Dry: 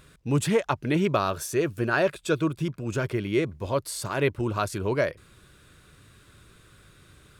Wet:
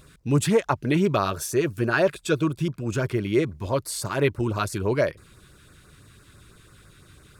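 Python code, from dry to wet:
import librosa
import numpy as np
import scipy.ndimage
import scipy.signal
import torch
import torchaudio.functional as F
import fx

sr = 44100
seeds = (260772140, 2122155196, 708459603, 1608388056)

y = fx.filter_lfo_notch(x, sr, shape='sine', hz=6.0, low_hz=510.0, high_hz=3400.0, q=1.3)
y = F.gain(torch.from_numpy(y), 3.0).numpy()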